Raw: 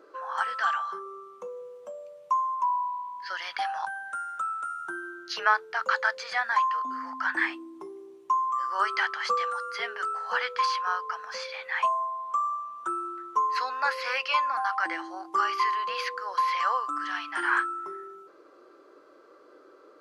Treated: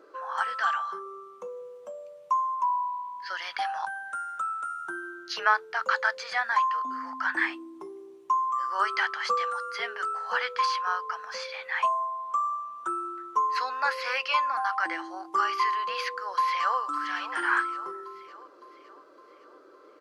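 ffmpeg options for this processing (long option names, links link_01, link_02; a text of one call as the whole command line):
ffmpeg -i in.wav -filter_complex "[0:a]asplit=2[link_01][link_02];[link_02]afade=type=in:start_time=16.04:duration=0.01,afade=type=out:start_time=16.79:duration=0.01,aecho=0:1:560|1120|1680|2240|2800|3360:0.266073|0.14634|0.0804869|0.0442678|0.0243473|0.013391[link_03];[link_01][link_03]amix=inputs=2:normalize=0" out.wav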